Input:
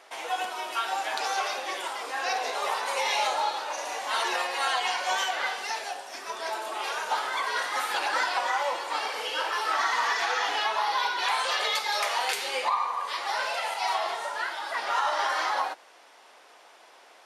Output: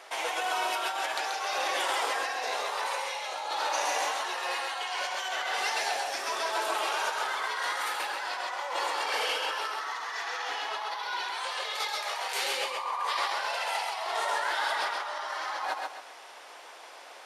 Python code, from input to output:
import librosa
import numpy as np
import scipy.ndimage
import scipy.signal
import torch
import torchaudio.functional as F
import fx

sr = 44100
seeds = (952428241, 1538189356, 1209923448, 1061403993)

p1 = fx.over_compress(x, sr, threshold_db=-34.0, ratio=-1.0)
p2 = fx.peak_eq(p1, sr, hz=170.0, db=-8.5, octaves=1.4)
y = p2 + fx.echo_feedback(p2, sr, ms=133, feedback_pct=34, wet_db=-3, dry=0)